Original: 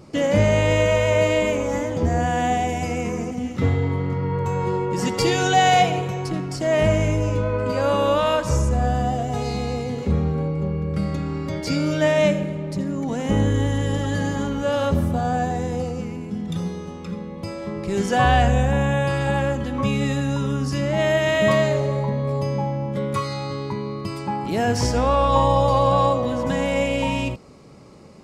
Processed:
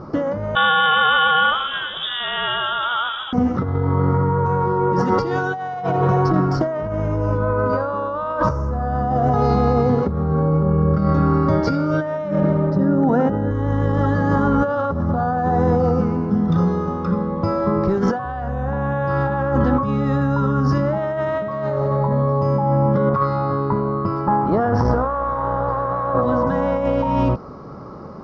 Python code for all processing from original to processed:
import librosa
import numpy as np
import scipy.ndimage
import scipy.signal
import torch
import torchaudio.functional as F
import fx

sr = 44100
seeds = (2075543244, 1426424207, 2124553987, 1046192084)

y = fx.chain(x, sr, fx.low_shelf(hz=86.0, db=-9.0),
    fx.freq_invert(carrier_hz=3600), at=(0.55, 3.33))
y = fx.chain(y, sr, fx.lowpass(hz=2700.0, slope=6),
    fx.notch_comb(f0_hz=1100.0), at=(12.7, 13.51))
y = fx.chain(y, sr, fx.high_shelf(hz=3000.0, db=-10.5),
    fx.tube_stage(drive_db=15.0, bias=0.6),
    fx.notch(hz=6500.0, q=12.0), at=(23.09, 26.22))
y = scipy.signal.sosfilt(scipy.signal.ellip(4, 1.0, 60, 5600.0, 'lowpass', fs=sr, output='sos'), y)
y = fx.high_shelf_res(y, sr, hz=1800.0, db=-11.0, q=3.0)
y = fx.over_compress(y, sr, threshold_db=-26.0, ratio=-1.0)
y = F.gain(torch.from_numpy(y), 7.0).numpy()